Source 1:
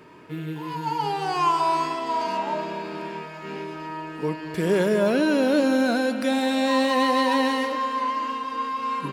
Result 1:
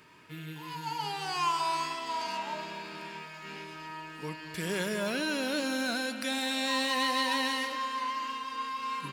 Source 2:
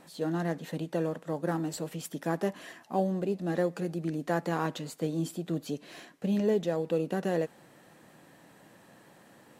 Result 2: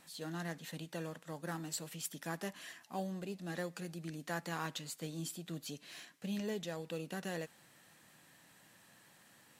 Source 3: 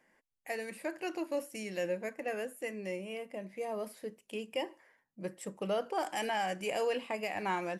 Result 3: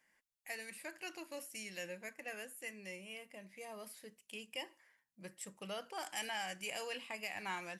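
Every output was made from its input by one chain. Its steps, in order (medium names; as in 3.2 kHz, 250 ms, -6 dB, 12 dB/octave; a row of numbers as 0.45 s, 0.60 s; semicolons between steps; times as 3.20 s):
amplifier tone stack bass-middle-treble 5-5-5; trim +6.5 dB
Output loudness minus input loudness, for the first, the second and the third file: -8.5 LU, -10.5 LU, -7.5 LU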